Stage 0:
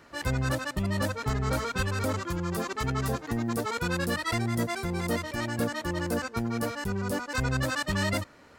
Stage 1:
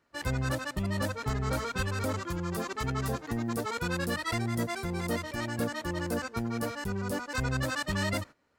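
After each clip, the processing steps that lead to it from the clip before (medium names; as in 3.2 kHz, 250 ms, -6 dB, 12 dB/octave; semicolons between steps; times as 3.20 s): gate -41 dBFS, range -16 dB; trim -2.5 dB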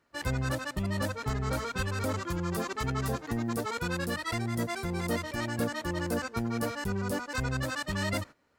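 gain riding 0.5 s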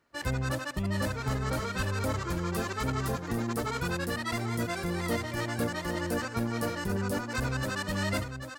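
multi-tap echo 71/794 ms -16/-8 dB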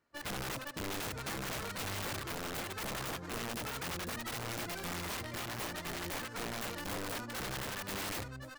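tracing distortion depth 0.29 ms; integer overflow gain 26.5 dB; trim -7 dB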